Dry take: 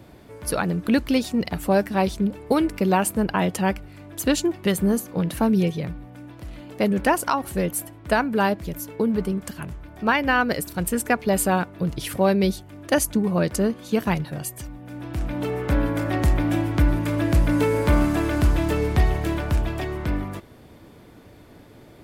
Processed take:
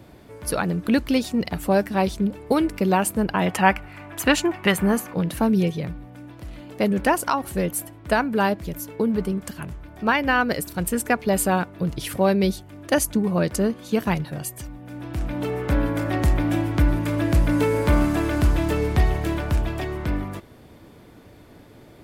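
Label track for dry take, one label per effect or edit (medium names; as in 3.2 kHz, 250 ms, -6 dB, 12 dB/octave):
3.460000	5.140000	high-order bell 1.4 kHz +9.5 dB 2.3 oct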